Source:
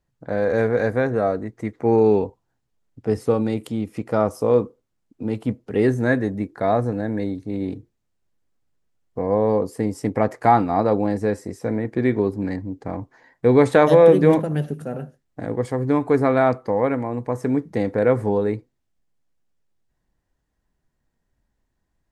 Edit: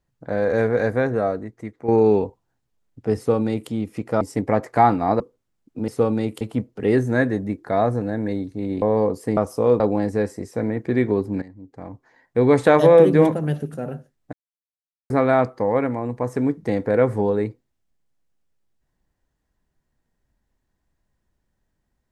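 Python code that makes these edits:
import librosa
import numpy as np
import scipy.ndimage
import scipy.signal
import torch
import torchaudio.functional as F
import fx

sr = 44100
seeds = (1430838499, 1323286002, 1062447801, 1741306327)

y = fx.edit(x, sr, fx.fade_out_to(start_s=1.1, length_s=0.78, floor_db=-9.5),
    fx.duplicate(start_s=3.17, length_s=0.53, to_s=5.32),
    fx.swap(start_s=4.21, length_s=0.43, other_s=9.89, other_length_s=0.99),
    fx.cut(start_s=7.73, length_s=1.61),
    fx.fade_in_from(start_s=12.5, length_s=1.27, floor_db=-17.5),
    fx.silence(start_s=15.41, length_s=0.77), tone=tone)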